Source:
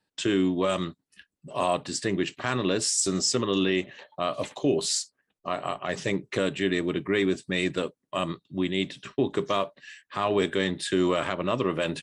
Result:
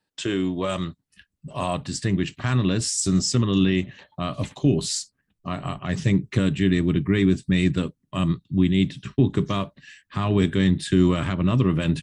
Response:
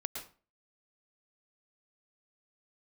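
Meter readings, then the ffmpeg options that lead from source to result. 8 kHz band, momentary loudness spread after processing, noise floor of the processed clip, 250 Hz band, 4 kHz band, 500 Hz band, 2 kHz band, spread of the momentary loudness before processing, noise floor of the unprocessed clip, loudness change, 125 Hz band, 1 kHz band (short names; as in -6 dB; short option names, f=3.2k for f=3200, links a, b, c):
0.0 dB, 10 LU, -78 dBFS, +6.5 dB, 0.0 dB, -1.5 dB, -0.5 dB, 8 LU, -83 dBFS, +4.0 dB, +13.0 dB, -2.0 dB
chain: -af "asubboost=boost=11:cutoff=160"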